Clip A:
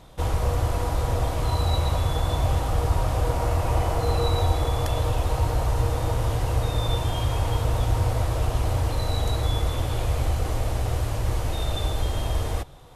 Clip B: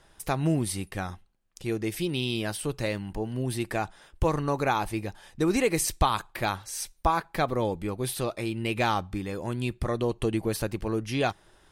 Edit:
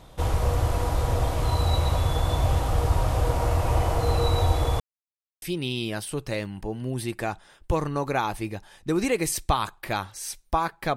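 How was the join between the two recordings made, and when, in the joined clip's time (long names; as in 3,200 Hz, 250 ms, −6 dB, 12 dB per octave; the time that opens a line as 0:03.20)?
clip A
0:04.80–0:05.42: silence
0:05.42: continue with clip B from 0:01.94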